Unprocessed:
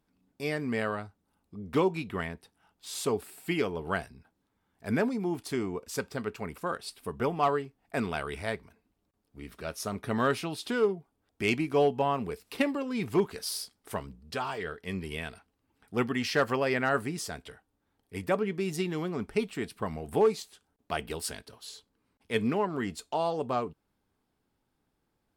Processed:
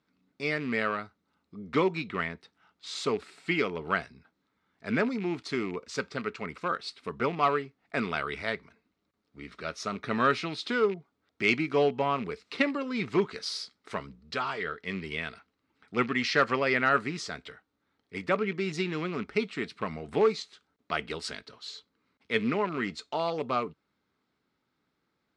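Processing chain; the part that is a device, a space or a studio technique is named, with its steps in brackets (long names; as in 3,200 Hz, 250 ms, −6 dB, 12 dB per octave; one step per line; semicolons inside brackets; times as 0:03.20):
car door speaker with a rattle (loose part that buzzes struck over −36 dBFS, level −38 dBFS; loudspeaker in its box 88–6,600 Hz, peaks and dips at 99 Hz −8 dB, 790 Hz −4 dB, 1,300 Hz +7 dB, 2,100 Hz +7 dB, 4,000 Hz +6 dB)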